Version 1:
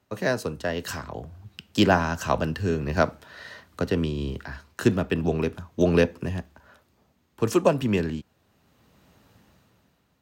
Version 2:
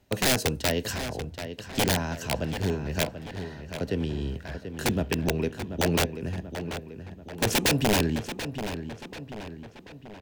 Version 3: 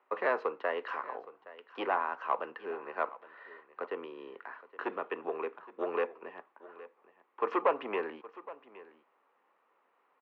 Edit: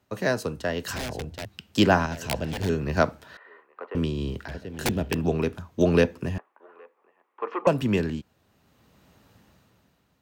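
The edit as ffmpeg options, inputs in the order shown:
-filter_complex "[1:a]asplit=3[a][b][c];[2:a]asplit=2[d][e];[0:a]asplit=6[f][g][h][i][j][k];[f]atrim=end=0.962[l];[a]atrim=start=0.958:end=1.452[m];[g]atrim=start=1.448:end=2.062[n];[b]atrim=start=2.058:end=2.692[o];[h]atrim=start=2.688:end=3.372[p];[d]atrim=start=3.368:end=3.952[q];[i]atrim=start=3.948:end=4.482[r];[c]atrim=start=4.478:end=5.142[s];[j]atrim=start=5.138:end=6.382[t];[e]atrim=start=6.378:end=7.672[u];[k]atrim=start=7.668[v];[l][m]acrossfade=d=0.004:c1=hsin:c2=hsin[w];[w][n]acrossfade=d=0.004:c1=hsin:c2=hsin[x];[x][o]acrossfade=d=0.004:c1=hsin:c2=hsin[y];[y][p]acrossfade=d=0.004:c1=hsin:c2=hsin[z];[z][q]acrossfade=d=0.004:c1=hsin:c2=hsin[aa];[aa][r]acrossfade=d=0.004:c1=hsin:c2=hsin[ab];[ab][s]acrossfade=d=0.004:c1=hsin:c2=hsin[ac];[ac][t]acrossfade=d=0.004:c1=hsin:c2=hsin[ad];[ad][u]acrossfade=d=0.004:c1=hsin:c2=hsin[ae];[ae][v]acrossfade=d=0.004:c1=hsin:c2=hsin"

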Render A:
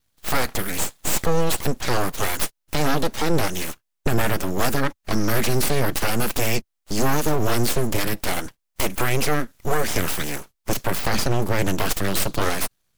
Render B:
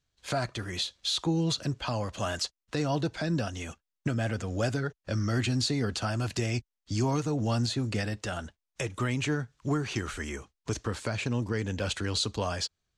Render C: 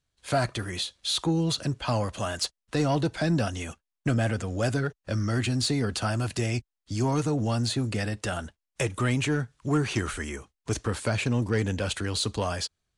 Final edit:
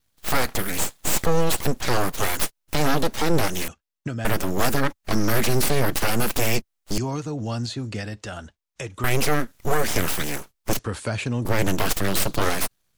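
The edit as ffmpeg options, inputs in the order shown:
-filter_complex "[1:a]asplit=2[a][b];[0:a]asplit=4[c][d][e][f];[c]atrim=end=3.682[g];[a]atrim=start=3.678:end=4.252[h];[d]atrim=start=4.248:end=6.982[i];[b]atrim=start=6.978:end=9.042[j];[e]atrim=start=9.038:end=10.792[k];[2:a]atrim=start=10.788:end=11.452[l];[f]atrim=start=11.448[m];[g][h]acrossfade=d=0.004:c1=hsin:c2=hsin[n];[n][i]acrossfade=d=0.004:c1=hsin:c2=hsin[o];[o][j]acrossfade=d=0.004:c1=hsin:c2=hsin[p];[p][k]acrossfade=d=0.004:c1=hsin:c2=hsin[q];[q][l]acrossfade=d=0.004:c1=hsin:c2=hsin[r];[r][m]acrossfade=d=0.004:c1=hsin:c2=hsin"

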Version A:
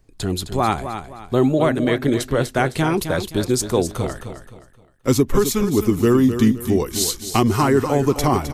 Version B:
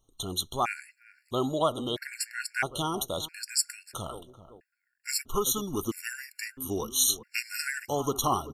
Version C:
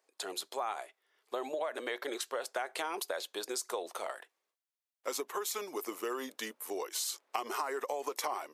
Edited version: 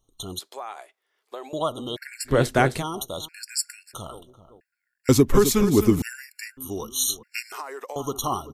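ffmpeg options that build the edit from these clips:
-filter_complex "[2:a]asplit=2[a][b];[0:a]asplit=2[c][d];[1:a]asplit=5[e][f][g][h][i];[e]atrim=end=0.392[j];[a]atrim=start=0.388:end=1.532[k];[f]atrim=start=1.528:end=2.34[l];[c]atrim=start=2.24:end=2.84[m];[g]atrim=start=2.74:end=5.092[n];[d]atrim=start=5.088:end=6.022[o];[h]atrim=start=6.018:end=7.522[p];[b]atrim=start=7.518:end=7.962[q];[i]atrim=start=7.958[r];[j][k]acrossfade=d=0.004:c1=hsin:c2=hsin[s];[s][l]acrossfade=d=0.004:c1=hsin:c2=hsin[t];[t][m]acrossfade=d=0.1:c1=tri:c2=tri[u];[u][n]acrossfade=d=0.1:c1=tri:c2=tri[v];[v][o]acrossfade=d=0.004:c1=hsin:c2=hsin[w];[w][p]acrossfade=d=0.004:c1=hsin:c2=hsin[x];[x][q]acrossfade=d=0.004:c1=hsin:c2=hsin[y];[y][r]acrossfade=d=0.004:c1=hsin:c2=hsin"

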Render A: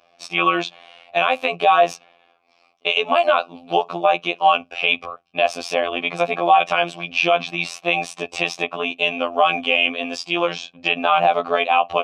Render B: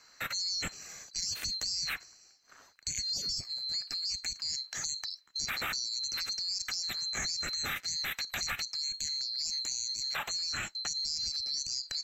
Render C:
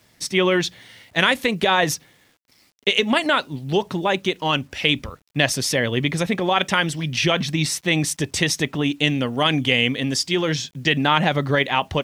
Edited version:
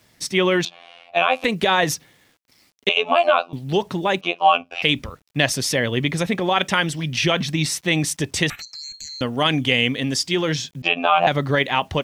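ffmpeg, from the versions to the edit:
-filter_complex "[0:a]asplit=4[a][b][c][d];[2:a]asplit=6[e][f][g][h][i][j];[e]atrim=end=0.652[k];[a]atrim=start=0.648:end=1.442[l];[f]atrim=start=1.438:end=2.892[m];[b]atrim=start=2.888:end=3.532[n];[g]atrim=start=3.528:end=4.212[o];[c]atrim=start=4.208:end=4.822[p];[h]atrim=start=4.818:end=8.502[q];[1:a]atrim=start=8.498:end=9.212[r];[i]atrim=start=9.208:end=10.822[s];[d]atrim=start=10.818:end=11.272[t];[j]atrim=start=11.268[u];[k][l]acrossfade=d=0.004:c1=hsin:c2=hsin[v];[v][m]acrossfade=d=0.004:c1=hsin:c2=hsin[w];[w][n]acrossfade=d=0.004:c1=hsin:c2=hsin[x];[x][o]acrossfade=d=0.004:c1=hsin:c2=hsin[y];[y][p]acrossfade=d=0.004:c1=hsin:c2=hsin[z];[z][q]acrossfade=d=0.004:c1=hsin:c2=hsin[aa];[aa][r]acrossfade=d=0.004:c1=hsin:c2=hsin[ab];[ab][s]acrossfade=d=0.004:c1=hsin:c2=hsin[ac];[ac][t]acrossfade=d=0.004:c1=hsin:c2=hsin[ad];[ad][u]acrossfade=d=0.004:c1=hsin:c2=hsin"

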